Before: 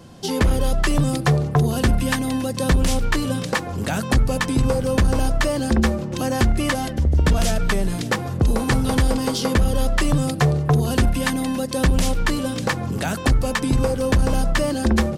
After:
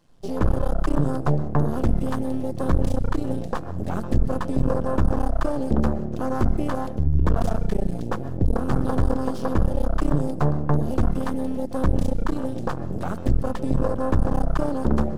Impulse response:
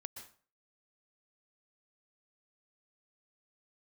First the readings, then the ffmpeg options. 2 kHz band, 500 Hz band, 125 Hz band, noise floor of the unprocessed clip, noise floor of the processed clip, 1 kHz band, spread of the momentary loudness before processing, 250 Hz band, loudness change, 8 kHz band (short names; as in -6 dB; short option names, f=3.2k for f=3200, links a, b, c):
-13.5 dB, -3.0 dB, -4.0 dB, -29 dBFS, -30 dBFS, -3.5 dB, 5 LU, -3.0 dB, -4.0 dB, -18.5 dB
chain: -filter_complex "[0:a]aeval=exprs='max(val(0),0)':c=same,afwtdn=0.0447,asplit=2[a][b];[1:a]atrim=start_sample=2205[c];[b][c]afir=irnorm=-1:irlink=0,volume=-3.5dB[d];[a][d]amix=inputs=2:normalize=0,volume=-1.5dB"